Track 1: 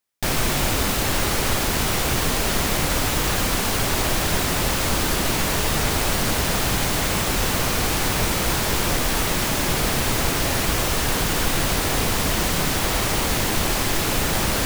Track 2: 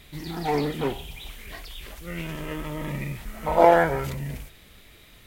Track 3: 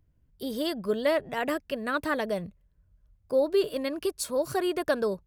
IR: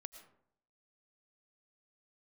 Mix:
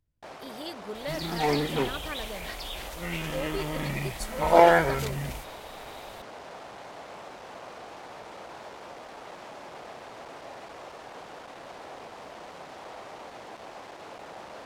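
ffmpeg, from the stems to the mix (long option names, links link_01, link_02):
-filter_complex "[0:a]volume=20dB,asoftclip=hard,volume=-20dB,bandpass=frequency=690:width_type=q:width=1.6:csg=0,volume=-11.5dB[link_01];[1:a]adelay=950,volume=-1.5dB[link_02];[2:a]volume=-11.5dB[link_03];[link_01][link_02][link_03]amix=inputs=3:normalize=0,equalizer=frequency=5100:width=0.41:gain=6.5"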